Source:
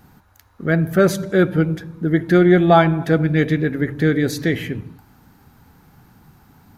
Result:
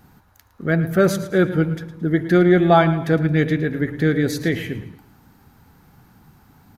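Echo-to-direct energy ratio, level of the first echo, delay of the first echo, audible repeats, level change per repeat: -13.5 dB, -14.0 dB, 0.111 s, 3, -8.5 dB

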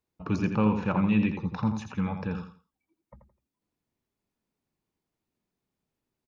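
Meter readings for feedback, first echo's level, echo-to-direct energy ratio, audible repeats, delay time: 25%, -8.0 dB, -7.5 dB, 3, 84 ms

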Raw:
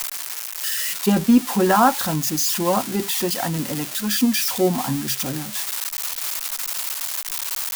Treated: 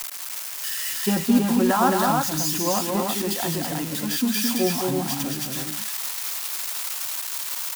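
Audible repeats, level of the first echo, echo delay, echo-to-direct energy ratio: 3, -18.0 dB, 41 ms, -0.5 dB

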